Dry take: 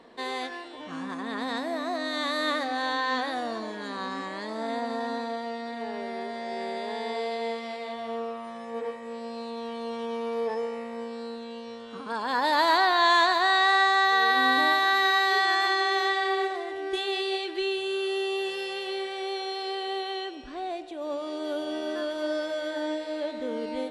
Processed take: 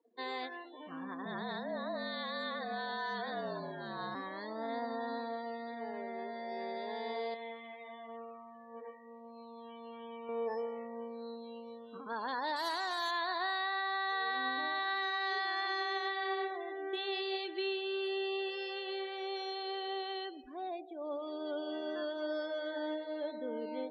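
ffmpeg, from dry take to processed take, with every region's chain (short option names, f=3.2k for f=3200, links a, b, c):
-filter_complex "[0:a]asettb=1/sr,asplit=3[a][b][c];[a]atrim=end=1.254[d];[b]atrim=start=1.25:end=4.15,asetpts=PTS-STARTPTS,afade=t=in:d=0.004:c=qsin,afade=t=out:st=2.896:d=0.004:c=qsin,asoftclip=type=hard:threshold=-19.5dB,afreqshift=-49,aeval=exprs='val(0)+0.00891*sin(2*PI*690*n/s)':c=same[e];[c]atrim=start=4.146[f];[d][e]acrossfade=d=0.004:c1=hsin:c2=qsin[g];[g][f]acrossfade=d=0.004:c1=qsin:c2=hsin,asettb=1/sr,asplit=3[h][i][j];[h]atrim=end=7.344[k];[i]atrim=start=7.34:end=10.29,asetpts=PTS-STARTPTS,afade=t=in:d=0.004:c=qsin,afade=t=out:st=2.946:d=0.004:c=qsin,lowpass=f=3.7k:w=0.5412,lowpass=f=3.7k:w=1.3066,equalizer=f=410:w=0.52:g=-8.5[l];[j]atrim=start=10.286[m];[k][l]acrossfade=d=0.004:c1=hsin:c2=qsin[n];[n][m]acrossfade=d=0.004:c1=qsin:c2=hsin,asettb=1/sr,asplit=3[o][p][q];[o]atrim=end=12.564[r];[p]atrim=start=12.56:end=13.11,asetpts=PTS-STARTPTS,afade=t=in:d=0.004:c=qsin,afade=t=out:st=0.546:d=0.004:c=qsin,aemphasis=mode=production:type=50kf,acrusher=bits=3:mix=0:aa=0.5[s];[q]atrim=start=13.106[t];[r][s]acrossfade=d=0.004:c1=hsin:c2=qsin[u];[u][t]acrossfade=d=0.004:c1=qsin:c2=hsin,alimiter=limit=-20.5dB:level=0:latency=1:release=257,lowshelf=f=91:g=-12,afftdn=nr=31:nf=-41,volume=-6.5dB"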